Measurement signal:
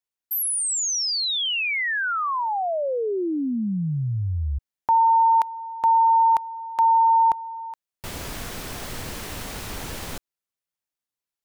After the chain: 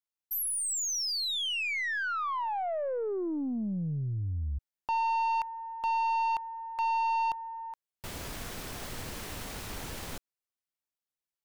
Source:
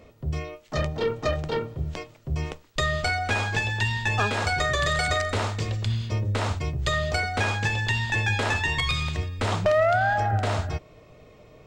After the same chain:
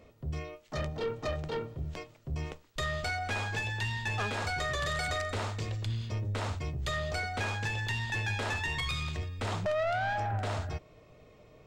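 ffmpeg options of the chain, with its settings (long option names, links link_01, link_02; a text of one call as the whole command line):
ffmpeg -i in.wav -af "aeval=exprs='0.266*(cos(1*acos(clip(val(0)/0.266,-1,1)))-cos(1*PI/2))+0.0668*(cos(2*acos(clip(val(0)/0.266,-1,1)))-cos(2*PI/2))':channel_layout=same,asoftclip=type=tanh:threshold=-20dB,volume=-6dB" out.wav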